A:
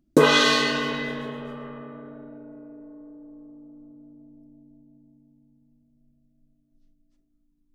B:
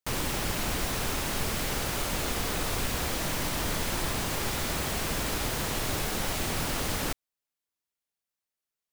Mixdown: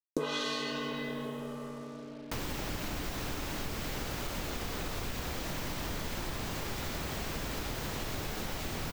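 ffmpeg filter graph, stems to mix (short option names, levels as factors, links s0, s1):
-filter_complex "[0:a]equalizer=f=1700:w=2.1:g=-5.5,acrusher=bits=7:mix=0:aa=0.5,volume=0.668[s0];[1:a]acrossover=split=450[s1][s2];[s2]acompressor=threshold=0.0282:ratio=6[s3];[s1][s3]amix=inputs=2:normalize=0,equalizer=f=10000:w=1.5:g=-7.5,adelay=2250,volume=0.841[s4];[s0][s4]amix=inputs=2:normalize=0,acompressor=threshold=0.0224:ratio=4"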